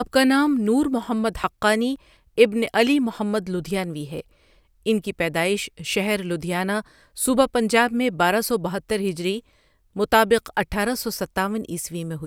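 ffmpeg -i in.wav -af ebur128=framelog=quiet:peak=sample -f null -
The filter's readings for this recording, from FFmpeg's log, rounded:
Integrated loudness:
  I:         -22.3 LUFS
  Threshold: -32.7 LUFS
Loudness range:
  LRA:         4.0 LU
  Threshold: -42.9 LUFS
  LRA low:   -25.4 LUFS
  LRA high:  -21.4 LUFS
Sample peak:
  Peak:       -1.5 dBFS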